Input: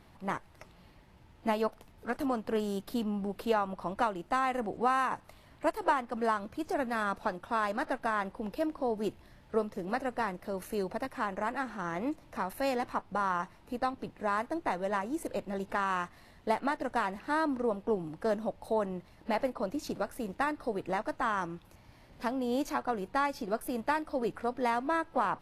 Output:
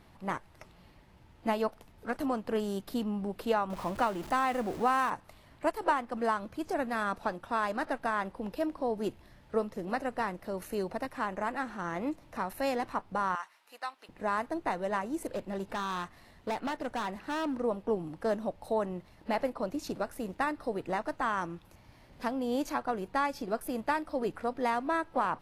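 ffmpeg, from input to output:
-filter_complex "[0:a]asettb=1/sr,asplit=3[s0][s1][s2];[s0]atrim=end=3.704[s3];[s1]atrim=start=3.7:end=5.1,asetpts=PTS-STARTPTS,afade=t=in:d=0.004:c=qsin,afade=t=out:st=1.396:d=0.004:c=qsin,aeval=exprs='val(0)+0.5*0.01*sgn(val(0))':c=same[s4];[s2]atrim=start=5.096[s5];[s3][s4]acrossfade=d=0.004:c1=hsin:c2=qsin[s6];[s6][s5]acrossfade=d=0.004:c1=qsin:c2=hsin,asettb=1/sr,asplit=3[s7][s8][s9];[s7]atrim=end=13.354[s10];[s8]atrim=start=13.35:end=14.09,asetpts=PTS-STARTPTS,afade=t=in:d=0.004:c=qsin,afade=t=out:st=0.736:d=0.004:c=qsin,highpass=1200[s11];[s9]atrim=start=14.086[s12];[s10][s11]acrossfade=d=0.004:c1=hsin:c2=qsin[s13];[s13][s12]acrossfade=d=0.004:c1=qsin:c2=hsin,asettb=1/sr,asplit=3[s14][s15][s16];[s14]atrim=end=15.284[s17];[s15]atrim=start=15.28:end=17.56,asetpts=PTS-STARTPTS,afade=t=in:d=0.004:c=qsin,afade=t=out:st=2.276:d=0.004:c=qsin,volume=29.9,asoftclip=hard,volume=0.0335[s18];[s16]atrim=start=17.556[s19];[s17][s18]acrossfade=d=0.004:c1=hsin:c2=qsin[s20];[s20][s19]acrossfade=d=0.004:c1=qsin:c2=hsin"

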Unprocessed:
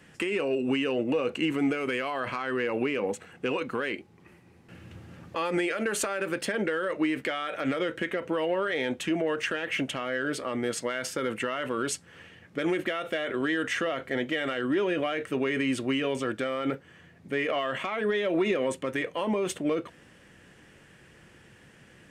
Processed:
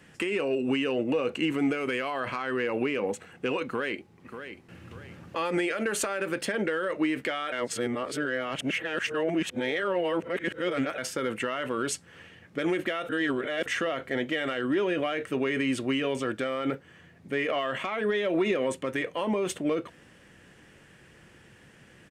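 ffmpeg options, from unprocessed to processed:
-filter_complex "[0:a]asplit=2[s0][s1];[s1]afade=t=in:st=3.65:d=0.01,afade=t=out:st=4.82:d=0.01,aecho=0:1:590|1180|1770|2360:0.316228|0.126491|0.0505964|0.0202386[s2];[s0][s2]amix=inputs=2:normalize=0,asplit=5[s3][s4][s5][s6][s7];[s3]atrim=end=7.522[s8];[s4]atrim=start=7.518:end=10.982,asetpts=PTS-STARTPTS,areverse[s9];[s5]atrim=start=10.978:end=13.092[s10];[s6]atrim=start=13.088:end=13.662,asetpts=PTS-STARTPTS,areverse[s11];[s7]atrim=start=13.658[s12];[s8][s9]acrossfade=d=0.004:c1=hsin:c2=hsin[s13];[s13][s10]acrossfade=d=0.004:c1=hsin:c2=hsin[s14];[s14][s11]acrossfade=d=0.004:c1=hsin:c2=hsin[s15];[s15][s12]acrossfade=d=0.004:c1=hsin:c2=hsin"

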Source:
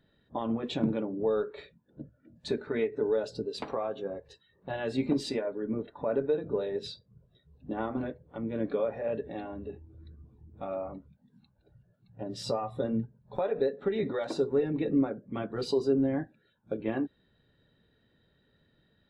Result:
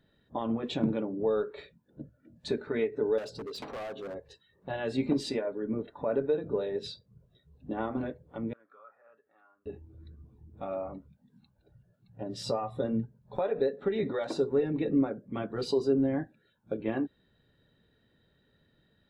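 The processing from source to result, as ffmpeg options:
-filter_complex "[0:a]asettb=1/sr,asplit=3[s0][s1][s2];[s0]atrim=end=3.184[s3];[s1]atrim=start=3.18:end=4.15,asetpts=PTS-STARTPTS,afade=t=in:d=0.004:c=qsin,afade=t=out:st=0.966:d=0.004:c=qsin,asoftclip=type=hard:threshold=0.0158[s4];[s2]atrim=start=4.146[s5];[s3][s4]acrossfade=d=0.004:c1=hsin:c2=qsin[s6];[s6][s5]acrossfade=d=0.004:c1=qsin:c2=hsin,asettb=1/sr,asplit=3[s7][s8][s9];[s7]atrim=end=8.534[s10];[s8]atrim=start=8.53:end=9.66,asetpts=PTS-STARTPTS,afade=t=in:d=0.004:c=qsin,afade=t=out:st=1.126:d=0.004:c=qsin,bandpass=f=1300:t=q:w=16[s11];[s9]atrim=start=9.656[s12];[s10][s11]acrossfade=d=0.004:c1=hsin:c2=qsin[s13];[s13][s12]acrossfade=d=0.004:c1=qsin:c2=hsin"

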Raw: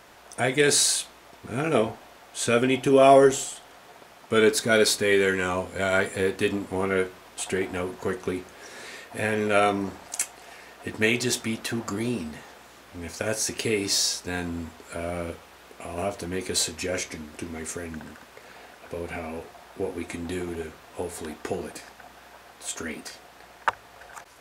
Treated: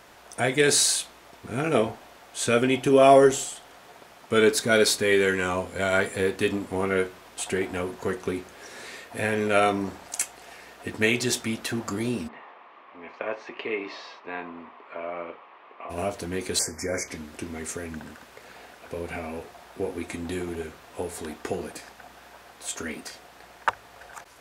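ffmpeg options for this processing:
-filter_complex "[0:a]asplit=3[s0][s1][s2];[s0]afade=t=out:st=12.27:d=0.02[s3];[s1]highpass=420,equalizer=f=490:t=q:w=4:g=-3,equalizer=f=1100:t=q:w=4:g=9,equalizer=f=1500:t=q:w=4:g=-7,lowpass=f=2600:w=0.5412,lowpass=f=2600:w=1.3066,afade=t=in:st=12.27:d=0.02,afade=t=out:st=15.89:d=0.02[s4];[s2]afade=t=in:st=15.89:d=0.02[s5];[s3][s4][s5]amix=inputs=3:normalize=0,asettb=1/sr,asplit=3[s6][s7][s8];[s6]atrim=end=16.594[s9];[s7]atrim=start=16.59:end=17.08,asetpts=PTS-STARTPTS,afade=t=in:d=0.004:c=qsin,afade=t=out:st=0.486:d=0.004:c=qsin,asuperstop=centerf=3300:order=20:qfactor=1.4[s10];[s8]atrim=start=17.076[s11];[s9][s10]acrossfade=d=0.004:c1=hsin:c2=qsin[s12];[s12][s11]acrossfade=d=0.004:c1=qsin:c2=hsin"

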